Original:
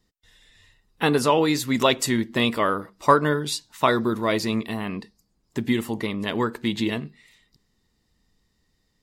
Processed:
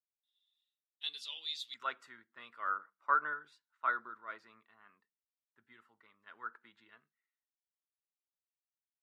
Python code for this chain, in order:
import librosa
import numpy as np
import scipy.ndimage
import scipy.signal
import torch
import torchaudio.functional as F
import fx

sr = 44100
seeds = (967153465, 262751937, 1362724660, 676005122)

y = fx.bandpass_q(x, sr, hz=fx.steps((0.0, 3500.0), (1.74, 1400.0)), q=6.9)
y = fx.band_widen(y, sr, depth_pct=70)
y = y * librosa.db_to_amplitude(-8.5)